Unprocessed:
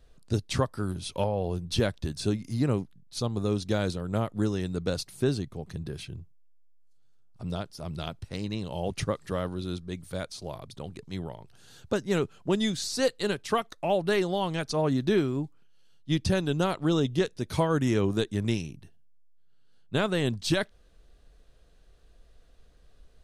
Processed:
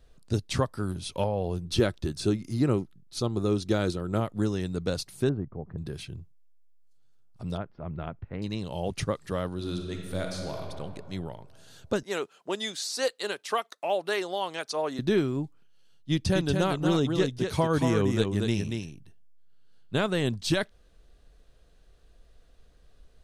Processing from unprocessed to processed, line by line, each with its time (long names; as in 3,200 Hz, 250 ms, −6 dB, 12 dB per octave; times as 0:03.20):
0:01.65–0:04.20: hollow resonant body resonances 350/1,300 Hz, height 8 dB
0:05.29–0:05.78: low-pass filter 1,400 Hz 24 dB per octave
0:07.57–0:08.42: low-pass filter 2,100 Hz 24 dB per octave
0:09.54–0:10.62: thrown reverb, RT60 2.3 s, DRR 1 dB
0:12.03–0:14.99: high-pass filter 470 Hz
0:16.12–0:20.04: single-tap delay 234 ms −5 dB